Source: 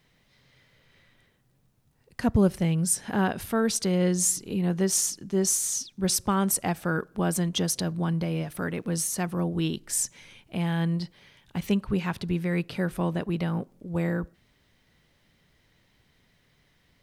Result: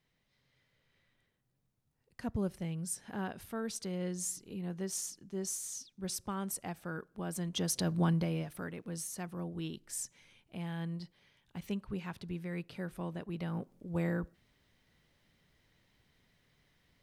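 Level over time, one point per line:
0:07.26 −13.5 dB
0:08.02 −1 dB
0:08.75 −12.5 dB
0:13.26 −12.5 dB
0:13.74 −6 dB

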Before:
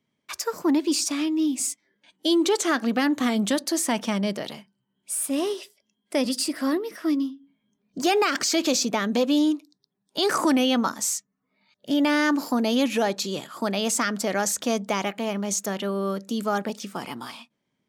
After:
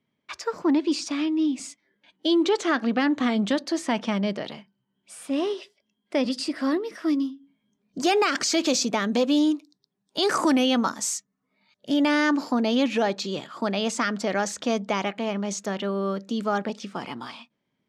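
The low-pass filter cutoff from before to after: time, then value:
0:06.24 4,100 Hz
0:07.22 8,500 Hz
0:11.96 8,500 Hz
0:12.52 4,900 Hz

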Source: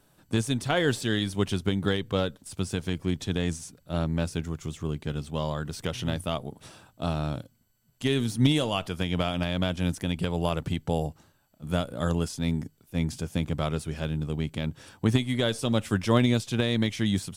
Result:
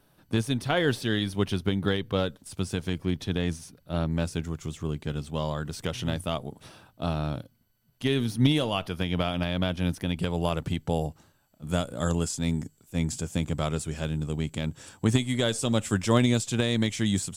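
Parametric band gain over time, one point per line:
parametric band 7,500 Hz 0.42 octaves
−9.5 dB
from 0:02.20 −2.5 dB
from 0:03.02 −10 dB
from 0:04.11 +0.5 dB
from 0:06.63 −9.5 dB
from 0:10.17 +1 dB
from 0:11.69 +11.5 dB

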